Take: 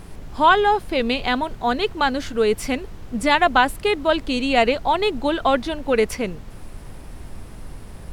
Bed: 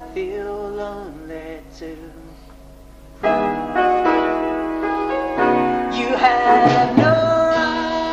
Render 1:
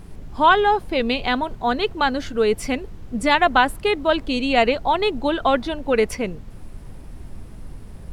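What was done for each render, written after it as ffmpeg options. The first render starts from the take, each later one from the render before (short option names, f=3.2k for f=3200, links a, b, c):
-af "afftdn=nr=6:nf=-39"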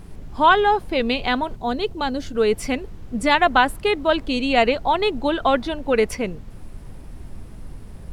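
-filter_complex "[0:a]asettb=1/sr,asplit=3[a][b][c];[a]atrim=end=1.564[d];[b]atrim=start=1.56:end=2.35,asetpts=PTS-STARTPTS,afade=t=in:d=0.004:c=qsin,afade=t=out:st=0.786:d=0.004:c=qsin,equalizer=f=1.6k:t=o:w=1.9:g=-8.5[e];[c]atrim=start=2.346[f];[d][e]acrossfade=d=0.004:c1=hsin:c2=qsin[g];[g][f]acrossfade=d=0.004:c1=qsin:c2=hsin"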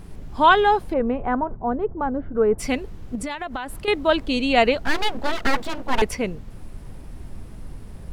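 -filter_complex "[0:a]asplit=3[a][b][c];[a]afade=t=out:st=0.92:d=0.02[d];[b]lowpass=f=1.4k:w=0.5412,lowpass=f=1.4k:w=1.3066,afade=t=in:st=0.92:d=0.02,afade=t=out:st=2.58:d=0.02[e];[c]afade=t=in:st=2.58:d=0.02[f];[d][e][f]amix=inputs=3:normalize=0,asettb=1/sr,asplit=3[g][h][i];[g]atrim=end=3.154[j];[h]atrim=start=3.15:end=3.88,asetpts=PTS-STARTPTS,afade=t=in:d=0.004:c=qsin,afade=t=out:st=0.726:d=0.004:c=qsin,acompressor=threshold=-25dB:ratio=16:attack=3.2:release=140:knee=1:detection=peak[k];[i]atrim=start=3.876[l];[j][k]acrossfade=d=0.004:c1=hsin:c2=qsin[m];[m][l]acrossfade=d=0.004:c1=qsin:c2=hsin,asettb=1/sr,asplit=3[n][o][p];[n]atrim=end=4.844[q];[o]atrim=start=4.84:end=6.02,asetpts=PTS-STARTPTS,afade=t=in:d=0.004:c=qsin,afade=t=out:st=1.176:d=0.004:c=qsin,aeval=exprs='abs(val(0))':c=same[r];[p]atrim=start=6.016[s];[q][r]acrossfade=d=0.004:c1=hsin:c2=qsin[t];[t][s]acrossfade=d=0.004:c1=qsin:c2=hsin"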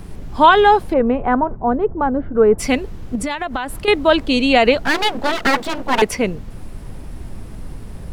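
-filter_complex "[0:a]acrossover=split=140|3700[a][b][c];[a]acompressor=threshold=-31dB:ratio=6[d];[d][b][c]amix=inputs=3:normalize=0,alimiter=level_in=6.5dB:limit=-1dB:release=50:level=0:latency=1"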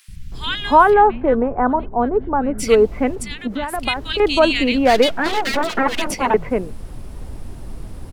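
-filter_complex "[0:a]acrossover=split=170|1900[a][b][c];[a]adelay=80[d];[b]adelay=320[e];[d][e][c]amix=inputs=3:normalize=0"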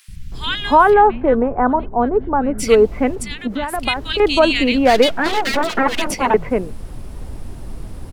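-af "volume=1.5dB,alimiter=limit=-2dB:level=0:latency=1"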